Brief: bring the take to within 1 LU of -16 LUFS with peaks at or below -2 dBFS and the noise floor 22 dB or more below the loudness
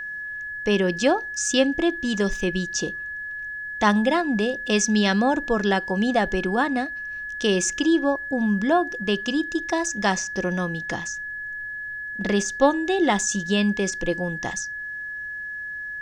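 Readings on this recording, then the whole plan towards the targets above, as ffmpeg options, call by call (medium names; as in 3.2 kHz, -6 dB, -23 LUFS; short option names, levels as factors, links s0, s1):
steady tone 1.7 kHz; tone level -30 dBFS; loudness -23.5 LUFS; peak level -4.5 dBFS; loudness target -16.0 LUFS
-> -af "bandreject=f=1700:w=30"
-af "volume=2.37,alimiter=limit=0.794:level=0:latency=1"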